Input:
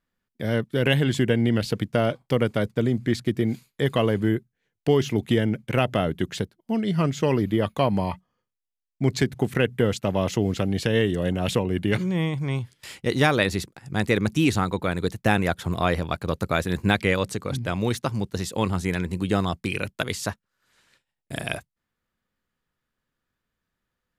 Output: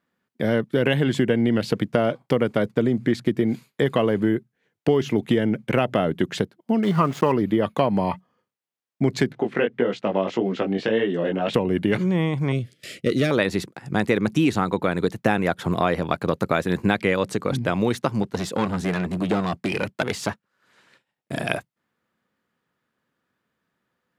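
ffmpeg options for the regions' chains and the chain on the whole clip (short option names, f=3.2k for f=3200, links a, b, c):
-filter_complex "[0:a]asettb=1/sr,asplit=3[a][b][c];[a]atrim=end=6.834[d];[b]atrim=start=6.83:end=7.32,asetpts=PTS-STARTPTS,afade=t=in:d=0.004:c=qsin,afade=t=out:st=0.486:d=0.004:c=qsin,equalizer=f=1.1k:t=o:w=0.62:g=12,aeval=exprs='val(0)*gte(abs(val(0)),0.02)':c=same[e];[c]atrim=start=7.316[f];[d][e]acrossfade=d=0.004:c1=hsin:c2=qsin[g];[g][f]acrossfade=d=0.004:c1=qsin:c2=hsin,asettb=1/sr,asplit=3[h][i][j];[h]atrim=end=9.324[k];[i]atrim=start=9.32:end=11.54,asetpts=PTS-STARTPTS,afade=t=in:d=0.004:c=qsin,afade=t=out:st=2.216:d=0.004:c=qsin,flanger=delay=15.5:depth=5.5:speed=1.7,highpass=230,lowpass=3.9k[l];[j]atrim=start=11.536[m];[k][l]acrossfade=d=0.004:c1=hsin:c2=qsin[n];[n][m]acrossfade=d=0.004:c1=qsin:c2=hsin,asettb=1/sr,asplit=3[o][p][q];[o]atrim=end=12.524[r];[p]atrim=start=12.52:end=13.31,asetpts=PTS-STARTPTS,afade=t=in:d=0.004:c=qsin,afade=t=out:st=0.786:d=0.004:c=qsin,equalizer=f=1.4k:t=o:w=0.68:g=-10,asoftclip=type=hard:threshold=-16.5dB,asuperstop=centerf=910:order=8:qfactor=1.8[s];[q]atrim=start=13.306[t];[r][s]acrossfade=d=0.004:c1=hsin:c2=qsin[u];[u][t]acrossfade=d=0.004:c1=qsin:c2=hsin,asettb=1/sr,asplit=3[v][w][x];[v]atrim=end=18.234[y];[w]atrim=start=18.23:end=21.48,asetpts=PTS-STARTPTS,afade=t=in:d=0.004:c=qsin,afade=t=out:st=3.246:d=0.004:c=qsin,aeval=exprs='clip(val(0),-1,0.0422)':c=same,highshelf=f=8.5k:g=-4.5[z];[x]atrim=start=21.476[aa];[y][z]acrossfade=d=0.004:c1=hsin:c2=qsin[ab];[ab][aa]acrossfade=d=0.004:c1=qsin:c2=hsin,highpass=160,highshelf=f=3.2k:g=-9.5,acompressor=threshold=-27dB:ratio=2.5,volume=8.5dB"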